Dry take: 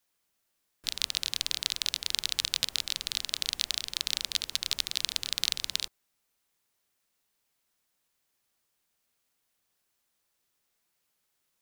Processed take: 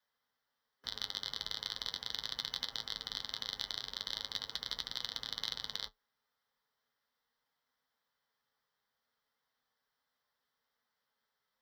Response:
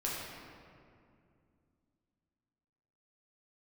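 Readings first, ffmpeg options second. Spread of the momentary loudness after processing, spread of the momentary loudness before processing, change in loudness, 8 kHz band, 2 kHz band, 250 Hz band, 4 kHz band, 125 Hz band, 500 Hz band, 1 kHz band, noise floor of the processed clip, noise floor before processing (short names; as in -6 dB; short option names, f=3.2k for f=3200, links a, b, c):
3 LU, 3 LU, -9.0 dB, -18.0 dB, -9.0 dB, -3.5 dB, -8.0 dB, -4.5 dB, -1.5 dB, -1.0 dB, under -85 dBFS, -78 dBFS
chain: -filter_complex "[0:a]superequalizer=6b=0.282:8b=0.631:12b=0.316:15b=0.282:16b=0.316,asplit=2[a][b];[b]highpass=f=720:p=1,volume=10dB,asoftclip=type=tanh:threshold=-6dB[c];[a][c]amix=inputs=2:normalize=0,lowpass=f=1.5k:p=1,volume=-6dB,flanger=delay=8.7:depth=1.5:regen=57:speed=0.39:shape=triangular,aeval=exprs='0.126*(cos(1*acos(clip(val(0)/0.126,-1,1)))-cos(1*PI/2))+0.0112*(cos(2*acos(clip(val(0)/0.126,-1,1)))-cos(2*PI/2))+0.0112*(cos(4*acos(clip(val(0)/0.126,-1,1)))-cos(4*PI/2))+0.00398*(cos(5*acos(clip(val(0)/0.126,-1,1)))-cos(5*PI/2))':c=same,afreqshift=29,volume=1dB"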